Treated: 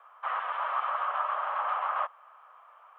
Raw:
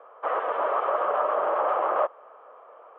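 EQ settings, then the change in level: high-pass 890 Hz 24 dB/octave; treble shelf 2.7 kHz +10.5 dB; -3.5 dB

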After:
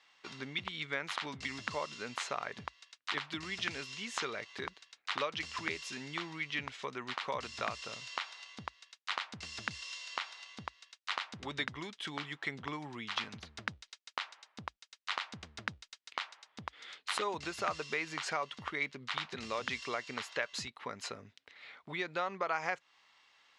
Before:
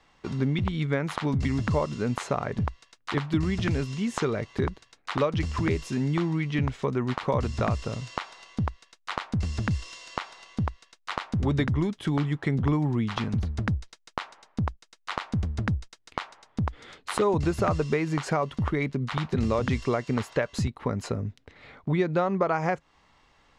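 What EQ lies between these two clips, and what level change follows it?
band-pass filter 3.5 kHz, Q 0.74; +1.0 dB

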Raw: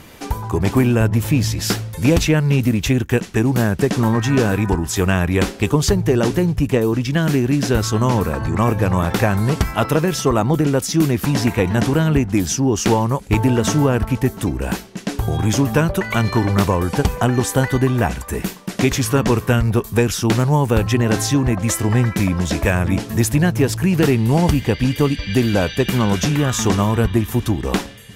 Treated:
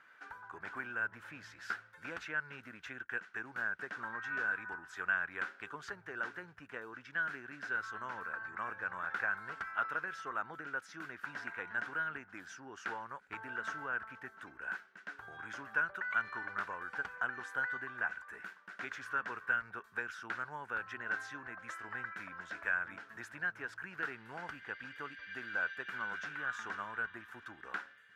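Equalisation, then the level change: band-pass filter 1.5 kHz, Q 8.4; -3.5 dB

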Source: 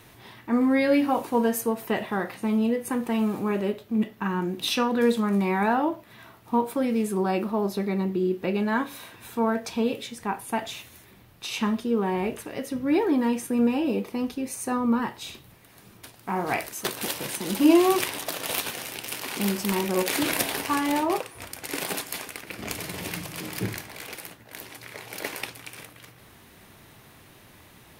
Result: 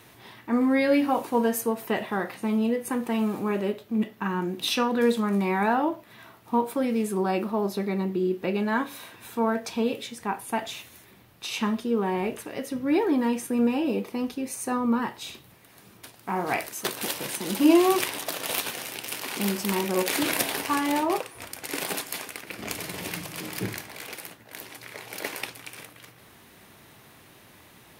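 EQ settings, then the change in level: bass shelf 79 Hz -10 dB; 0.0 dB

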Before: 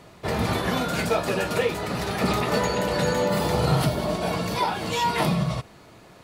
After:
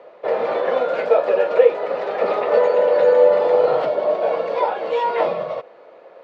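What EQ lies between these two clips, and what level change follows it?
resonant high-pass 520 Hz, resonance Q 6.1; low-pass 2.5 kHz 12 dB/octave; distance through air 64 m; 0.0 dB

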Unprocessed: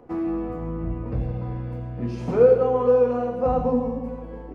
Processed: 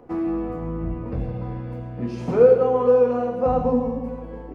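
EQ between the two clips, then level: hum notches 60/120 Hz; +1.5 dB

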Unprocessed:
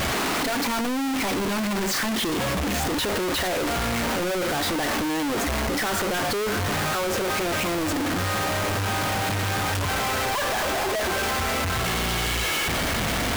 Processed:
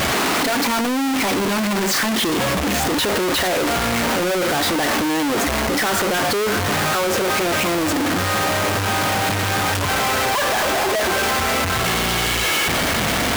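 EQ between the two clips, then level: bass shelf 69 Hz -10.5 dB; +6.0 dB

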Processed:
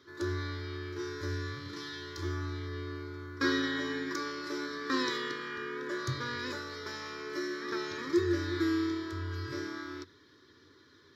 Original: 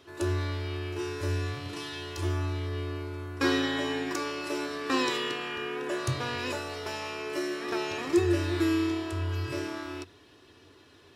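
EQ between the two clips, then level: high-pass 170 Hz 6 dB/octave; treble shelf 10 kHz -7.5 dB; static phaser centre 2.7 kHz, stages 6; 0.0 dB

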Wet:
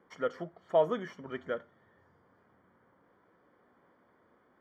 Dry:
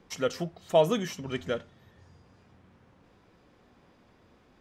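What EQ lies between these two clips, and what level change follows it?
Savitzky-Golay filter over 41 samples; high-pass 550 Hz 6 dB/octave; peaking EQ 780 Hz -4 dB 0.4 oct; 0.0 dB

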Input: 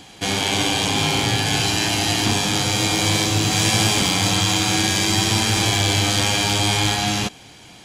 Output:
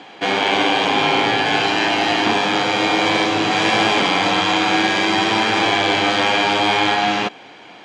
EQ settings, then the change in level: band-pass 350–2300 Hz; +8.0 dB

